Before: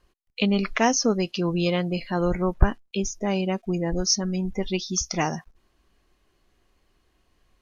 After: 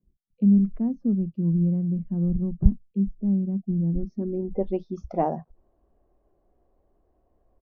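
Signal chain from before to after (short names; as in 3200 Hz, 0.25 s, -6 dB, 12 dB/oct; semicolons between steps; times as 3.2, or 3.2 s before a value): low-pass sweep 190 Hz -> 650 Hz, 3.87–4.68; tone controls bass +1 dB, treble +3 dB; bands offset in time highs, lows 30 ms, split 150 Hz; gain -1.5 dB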